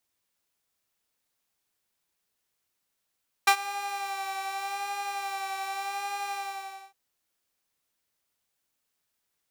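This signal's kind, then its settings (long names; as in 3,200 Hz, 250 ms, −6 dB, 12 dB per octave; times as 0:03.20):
subtractive patch with vibrato G4, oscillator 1 saw, oscillator 2 square, interval +12 semitones, detune 25 cents, oscillator 2 level −4.5 dB, sub −24 dB, filter highpass, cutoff 860 Hz, Q 1.7, filter envelope 0.5 octaves, filter sustain 40%, attack 7.3 ms, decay 0.08 s, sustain −19 dB, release 0.61 s, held 2.85 s, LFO 0.84 Hz, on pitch 31 cents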